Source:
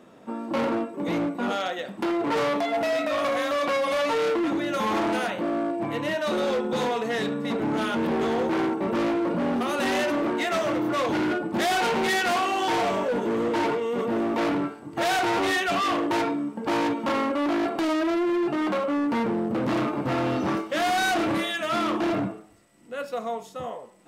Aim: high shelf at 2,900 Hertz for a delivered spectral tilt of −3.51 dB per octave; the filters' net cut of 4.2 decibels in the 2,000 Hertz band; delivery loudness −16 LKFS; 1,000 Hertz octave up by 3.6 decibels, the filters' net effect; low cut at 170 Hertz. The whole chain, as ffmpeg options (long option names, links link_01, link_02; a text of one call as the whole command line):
ffmpeg -i in.wav -af "highpass=170,equalizer=frequency=1000:width_type=o:gain=7,equalizer=frequency=2000:width_type=o:gain=-7,highshelf=frequency=2900:gain=-4.5,volume=8.5dB" out.wav